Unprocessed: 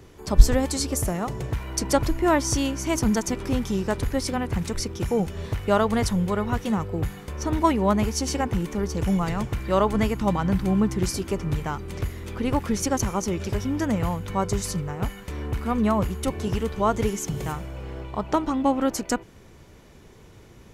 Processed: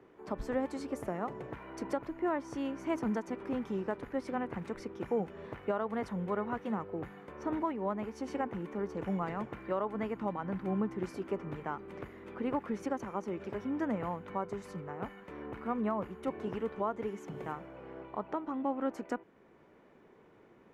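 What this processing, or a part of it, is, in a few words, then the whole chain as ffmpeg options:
DJ mixer with the lows and highs turned down: -filter_complex "[0:a]acrossover=split=190 2300:gain=0.0794 1 0.0794[s0][s1][s2];[s0][s1][s2]amix=inputs=3:normalize=0,alimiter=limit=0.168:level=0:latency=1:release=471,volume=0.473"

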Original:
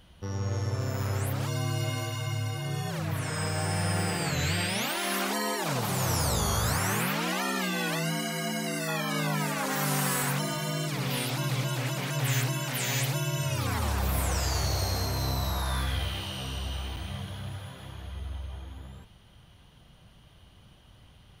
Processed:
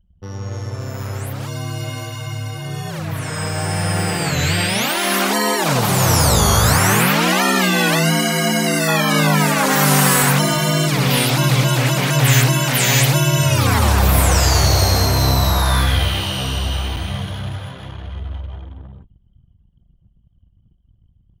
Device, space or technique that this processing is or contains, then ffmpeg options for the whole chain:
voice memo with heavy noise removal: -af "anlmdn=0.0158,dynaudnorm=f=700:g=13:m=3.76,volume=1.5"

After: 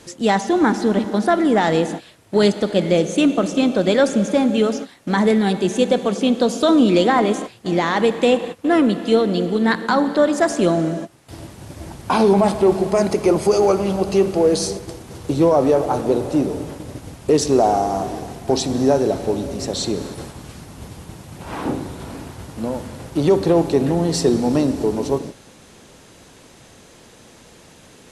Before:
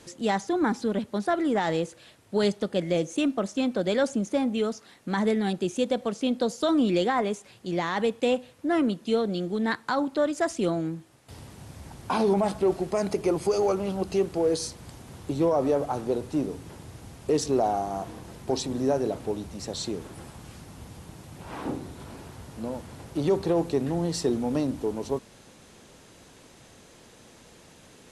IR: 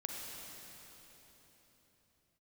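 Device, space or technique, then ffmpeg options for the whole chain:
keyed gated reverb: -filter_complex "[0:a]asplit=3[s0][s1][s2];[1:a]atrim=start_sample=2205[s3];[s1][s3]afir=irnorm=-1:irlink=0[s4];[s2]apad=whole_len=1239961[s5];[s4][s5]sidechaingate=range=0.0224:threshold=0.00794:ratio=16:detection=peak,volume=0.501[s6];[s0][s6]amix=inputs=2:normalize=0,volume=2"

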